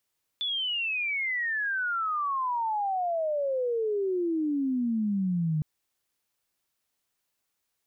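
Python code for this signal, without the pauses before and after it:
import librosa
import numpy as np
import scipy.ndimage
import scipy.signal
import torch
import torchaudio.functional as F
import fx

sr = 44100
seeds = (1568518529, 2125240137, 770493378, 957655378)

y = fx.chirp(sr, length_s=5.21, from_hz=3500.0, to_hz=150.0, law='logarithmic', from_db=-27.0, to_db=-24.0)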